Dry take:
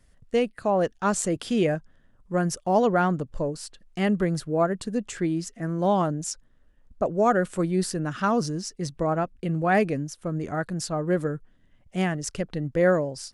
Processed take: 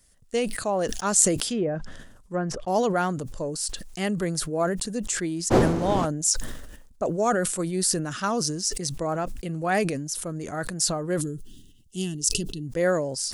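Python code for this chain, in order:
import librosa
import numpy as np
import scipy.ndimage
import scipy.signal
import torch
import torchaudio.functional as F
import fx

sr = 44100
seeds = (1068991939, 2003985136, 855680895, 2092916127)

y = fx.dmg_wind(x, sr, seeds[0], corner_hz=390.0, level_db=-19.0, at=(5.5, 6.04), fade=0.02)
y = fx.bass_treble(y, sr, bass_db=-3, treble_db=14)
y = fx.env_lowpass_down(y, sr, base_hz=900.0, full_db=-18.5, at=(1.47, 2.68))
y = fx.spec_box(y, sr, start_s=11.21, length_s=1.46, low_hz=440.0, high_hz=2600.0, gain_db=-22)
y = fx.sustainer(y, sr, db_per_s=50.0)
y = y * 10.0 ** (-2.5 / 20.0)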